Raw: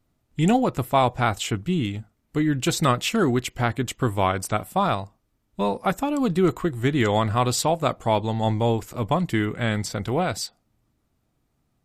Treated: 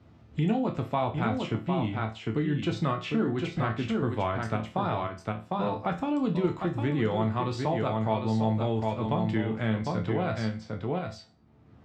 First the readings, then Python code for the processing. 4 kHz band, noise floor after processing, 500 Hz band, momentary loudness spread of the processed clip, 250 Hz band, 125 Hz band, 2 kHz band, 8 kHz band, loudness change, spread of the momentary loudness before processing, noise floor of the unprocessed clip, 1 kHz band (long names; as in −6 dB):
−10.5 dB, −56 dBFS, −5.5 dB, 6 LU, −4.0 dB, −4.0 dB, −7.5 dB, below −20 dB, −5.5 dB, 6 LU, −72 dBFS, −7.0 dB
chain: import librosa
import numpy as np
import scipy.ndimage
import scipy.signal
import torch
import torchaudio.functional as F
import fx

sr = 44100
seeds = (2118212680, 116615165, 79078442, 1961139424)

p1 = fx.low_shelf(x, sr, hz=290.0, db=4.5)
p2 = p1 + 10.0 ** (-7.0 / 20.0) * np.pad(p1, (int(753 * sr / 1000.0), 0))[:len(p1)]
p3 = fx.level_steps(p2, sr, step_db=14)
p4 = p2 + (p3 * 10.0 ** (2.0 / 20.0))
p5 = scipy.signal.sosfilt(scipy.signal.butter(2, 78.0, 'highpass', fs=sr, output='sos'), p4)
p6 = fx.air_absorb(p5, sr, metres=190.0)
p7 = fx.resonator_bank(p6, sr, root=38, chord='minor', decay_s=0.29)
y = fx.band_squash(p7, sr, depth_pct=70)